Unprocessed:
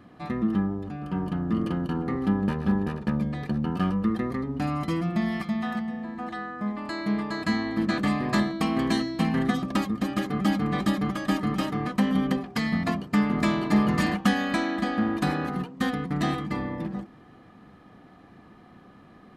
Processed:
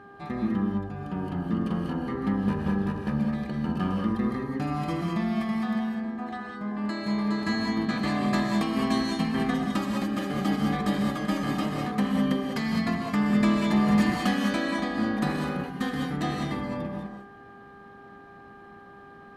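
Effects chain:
reverb whose tail is shaped and stops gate 230 ms rising, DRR 0.5 dB
hum with harmonics 400 Hz, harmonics 4, −46 dBFS −1 dB per octave
level −3.5 dB

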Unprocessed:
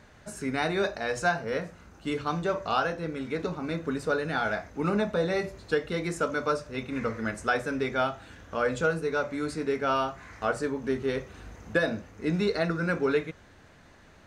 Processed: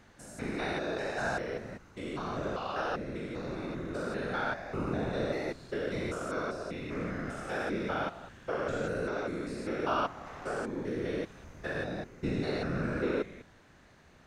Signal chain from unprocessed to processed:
spectrum averaged block by block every 200 ms
random phases in short frames
level −2.5 dB

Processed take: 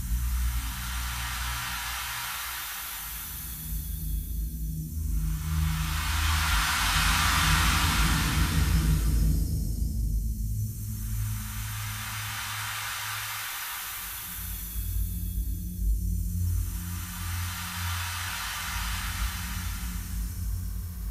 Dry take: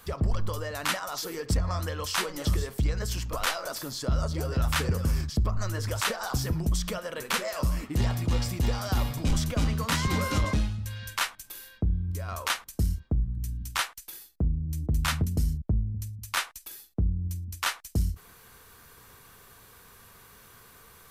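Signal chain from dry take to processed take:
noise reduction from a noise print of the clip's start 7 dB
volume swells 138 ms
extreme stretch with random phases 4.3×, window 1.00 s, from 0:13.40
level +8 dB

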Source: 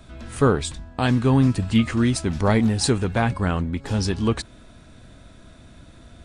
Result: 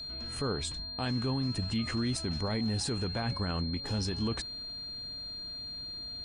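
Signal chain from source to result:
brickwall limiter −17 dBFS, peak gain reduction 10.5 dB
steady tone 4,200 Hz −31 dBFS
level −7.5 dB

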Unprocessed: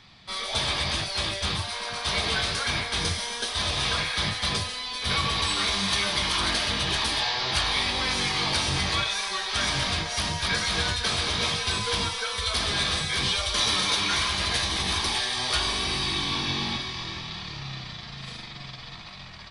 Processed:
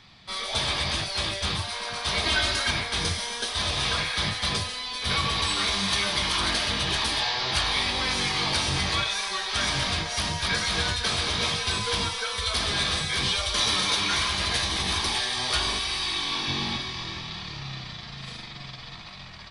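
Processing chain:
0:02.25–0:02.71: comb filter 3.2 ms, depth 84%
0:15.78–0:16.47: parametric band 240 Hz → 73 Hz −12.5 dB 2.7 octaves

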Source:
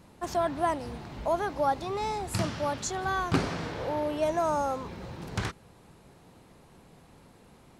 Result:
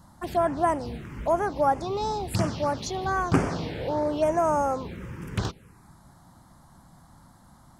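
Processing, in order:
phaser swept by the level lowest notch 400 Hz, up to 4,000 Hz, full sweep at −24.5 dBFS
level +4.5 dB

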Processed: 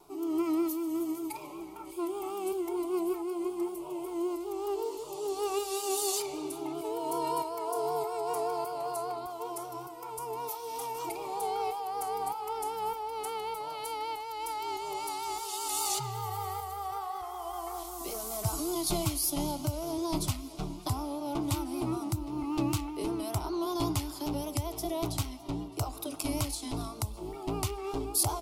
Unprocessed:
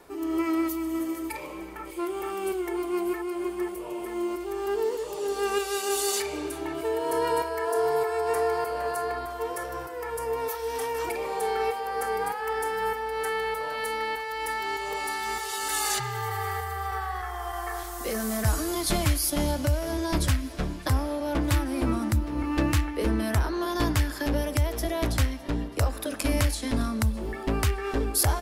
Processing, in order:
phaser with its sweep stopped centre 340 Hz, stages 8
pitch vibrato 5.2 Hz 58 cents
level −2.5 dB

